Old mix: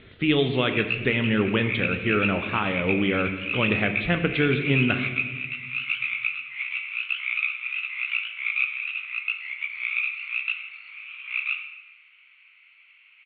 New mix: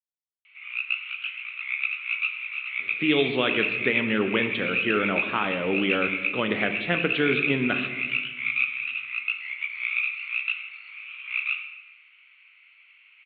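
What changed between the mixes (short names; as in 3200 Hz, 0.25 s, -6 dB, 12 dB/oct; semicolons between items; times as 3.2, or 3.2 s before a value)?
speech: entry +2.80 s; master: add HPF 220 Hz 12 dB/oct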